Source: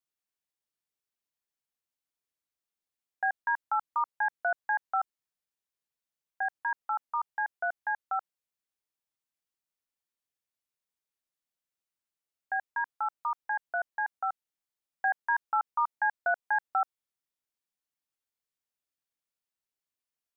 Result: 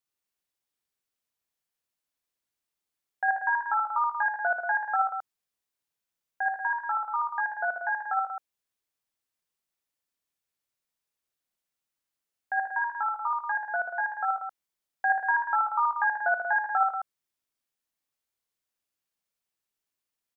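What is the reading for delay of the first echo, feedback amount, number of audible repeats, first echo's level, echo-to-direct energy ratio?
57 ms, repeats not evenly spaced, 3, −4.0 dB, −1.0 dB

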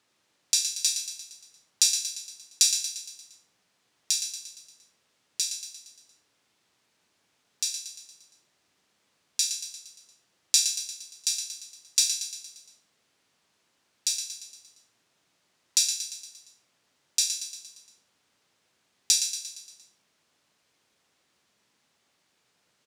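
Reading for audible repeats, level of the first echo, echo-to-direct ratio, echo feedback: 6, −8.0 dB, −6.5 dB, 54%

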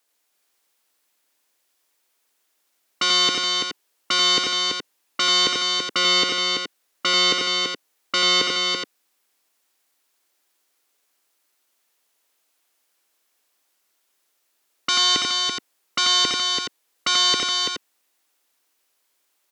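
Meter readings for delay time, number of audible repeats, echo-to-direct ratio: 88 ms, 3, −0.5 dB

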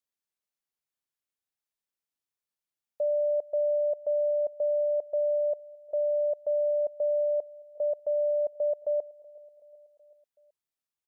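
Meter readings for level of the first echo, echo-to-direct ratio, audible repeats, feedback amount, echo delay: −22.5 dB, −20.5 dB, 3, 59%, 376 ms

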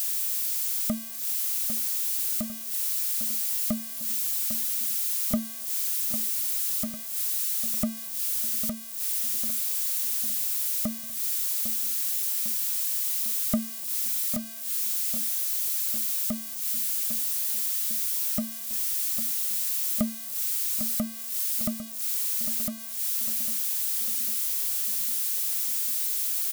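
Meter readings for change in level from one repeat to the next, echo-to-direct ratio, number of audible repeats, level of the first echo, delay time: −4.5 dB, −9.5 dB, 5, −11.5 dB, 801 ms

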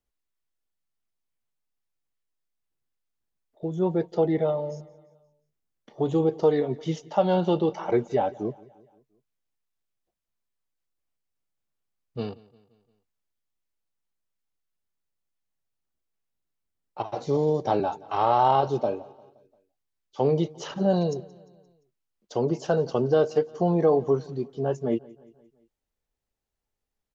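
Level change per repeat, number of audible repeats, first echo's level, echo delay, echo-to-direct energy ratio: −5.5 dB, 3, −22.5 dB, 174 ms, −21.0 dB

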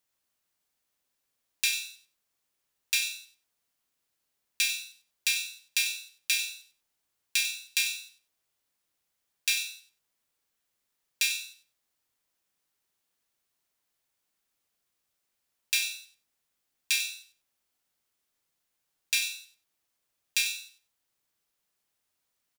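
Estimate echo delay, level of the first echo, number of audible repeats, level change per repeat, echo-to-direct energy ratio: 96 ms, −11.0 dB, 2, −15.5 dB, −11.0 dB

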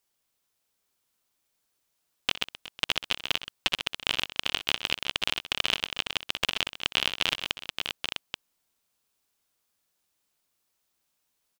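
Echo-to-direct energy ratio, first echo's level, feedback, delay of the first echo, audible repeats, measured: −5.0 dB, −15.5 dB, repeats not evenly spaced, 62 ms, 4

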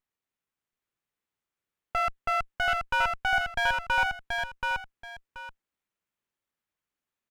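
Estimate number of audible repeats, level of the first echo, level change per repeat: 2, −3.5 dB, −12.5 dB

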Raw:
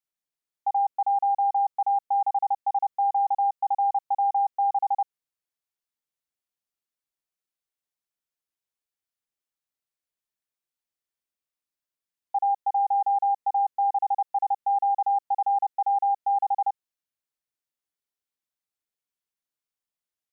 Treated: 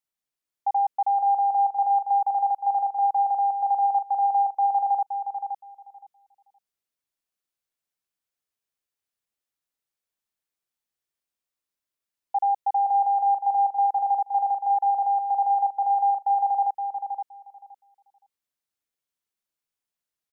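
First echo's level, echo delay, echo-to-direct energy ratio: −7.0 dB, 519 ms, −7.0 dB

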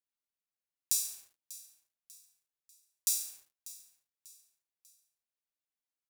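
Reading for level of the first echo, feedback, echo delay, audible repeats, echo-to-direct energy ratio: −17.5 dB, 40%, 593 ms, 3, −17.0 dB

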